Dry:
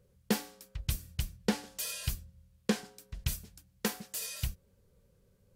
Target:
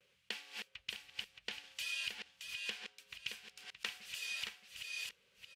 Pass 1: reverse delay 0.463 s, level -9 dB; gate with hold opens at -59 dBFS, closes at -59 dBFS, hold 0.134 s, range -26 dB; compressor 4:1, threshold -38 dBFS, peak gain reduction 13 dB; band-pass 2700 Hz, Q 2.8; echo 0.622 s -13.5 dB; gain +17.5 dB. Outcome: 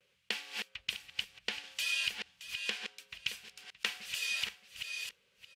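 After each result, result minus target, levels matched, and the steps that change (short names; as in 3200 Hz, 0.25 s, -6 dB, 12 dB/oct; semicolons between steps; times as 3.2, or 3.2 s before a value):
compressor: peak gain reduction -7 dB; echo-to-direct -6.5 dB
change: compressor 4:1, threshold -47.5 dBFS, peak gain reduction 20 dB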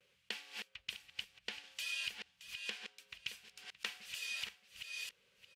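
echo-to-direct -6.5 dB
change: echo 0.622 s -7 dB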